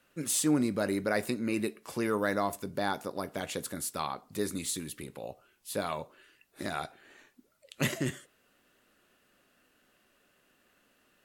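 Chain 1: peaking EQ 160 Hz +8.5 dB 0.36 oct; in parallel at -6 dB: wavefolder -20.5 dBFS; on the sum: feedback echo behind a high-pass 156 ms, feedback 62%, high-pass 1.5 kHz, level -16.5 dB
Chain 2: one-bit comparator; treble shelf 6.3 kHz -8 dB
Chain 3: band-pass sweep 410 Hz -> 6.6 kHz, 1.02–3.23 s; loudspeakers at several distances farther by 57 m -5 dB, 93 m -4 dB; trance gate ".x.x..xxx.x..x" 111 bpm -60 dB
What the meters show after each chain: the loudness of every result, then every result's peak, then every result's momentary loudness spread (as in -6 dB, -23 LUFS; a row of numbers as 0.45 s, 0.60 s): -29.0 LUFS, -35.5 LUFS, -40.5 LUFS; -13.0 dBFS, -35.0 dBFS, -20.0 dBFS; 13 LU, 1 LU, 22 LU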